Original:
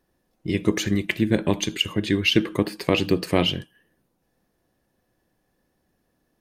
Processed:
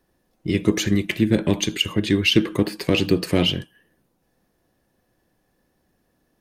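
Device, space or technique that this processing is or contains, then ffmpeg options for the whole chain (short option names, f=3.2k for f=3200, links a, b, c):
one-band saturation: -filter_complex "[0:a]acrossover=split=490|2300[a][b][c];[b]asoftclip=type=tanh:threshold=-30dB[d];[a][d][c]amix=inputs=3:normalize=0,volume=3dB"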